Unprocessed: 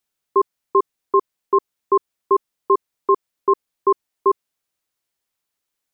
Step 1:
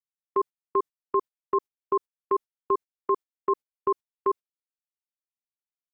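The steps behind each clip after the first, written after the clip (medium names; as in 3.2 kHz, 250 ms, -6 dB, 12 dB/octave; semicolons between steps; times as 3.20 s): gate -24 dBFS, range -24 dB; trim -8 dB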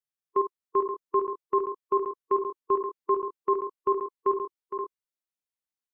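multi-tap echo 53/462/527/549 ms -10/-9.5/-9/-16.5 dB; harmonic-percussive split percussive -4 dB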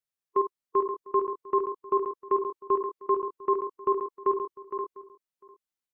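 echo from a far wall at 120 m, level -20 dB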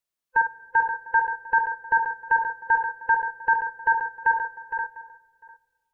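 split-band scrambler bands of 500 Hz; on a send at -17 dB: reverberation RT60 1.8 s, pre-delay 5 ms; on the sum: trim +4 dB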